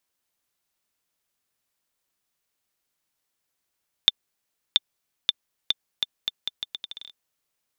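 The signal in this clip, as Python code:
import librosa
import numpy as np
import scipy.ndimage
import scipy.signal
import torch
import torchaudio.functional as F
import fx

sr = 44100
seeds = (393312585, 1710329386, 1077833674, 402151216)

y = fx.bouncing_ball(sr, first_gap_s=0.68, ratio=0.78, hz=3560.0, decay_ms=28.0, level_db=-1.5)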